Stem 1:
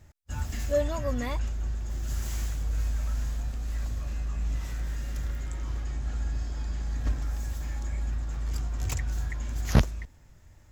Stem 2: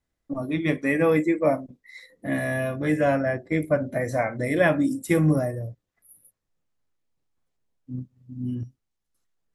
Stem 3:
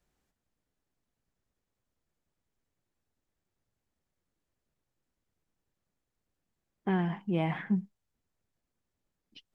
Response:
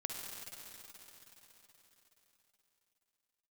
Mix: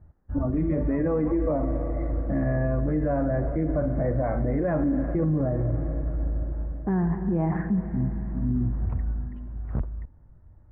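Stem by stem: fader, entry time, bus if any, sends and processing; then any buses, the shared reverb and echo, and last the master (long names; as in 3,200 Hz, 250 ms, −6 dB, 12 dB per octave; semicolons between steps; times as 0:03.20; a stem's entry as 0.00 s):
−5.0 dB, 0.00 s, no send, automatic ducking −8 dB, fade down 0.25 s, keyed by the third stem
−2.0 dB, 0.05 s, send −7 dB, de-essing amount 75%
0.0 dB, 0.00 s, send −4 dB, parametric band 1,800 Hz +6.5 dB 0.31 octaves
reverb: on, RT60 4.3 s, pre-delay 47 ms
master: low-pass filter 1,400 Hz 24 dB per octave; low-shelf EQ 380 Hz +8 dB; brickwall limiter −17.5 dBFS, peak gain reduction 12.5 dB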